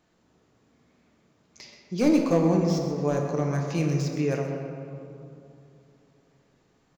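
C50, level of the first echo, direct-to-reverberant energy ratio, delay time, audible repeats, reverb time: 3.0 dB, −11.5 dB, 1.0 dB, 129 ms, 1, 2.9 s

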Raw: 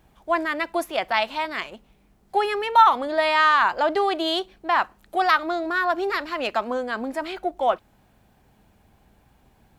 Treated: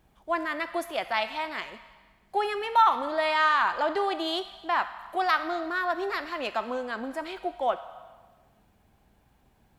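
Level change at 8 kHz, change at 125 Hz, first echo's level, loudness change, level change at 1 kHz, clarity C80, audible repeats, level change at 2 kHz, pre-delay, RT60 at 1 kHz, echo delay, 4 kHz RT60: can't be measured, can't be measured, no echo audible, −5.0 dB, −5.0 dB, 13.5 dB, no echo audible, −5.0 dB, 8 ms, 1.5 s, no echo audible, 1.4 s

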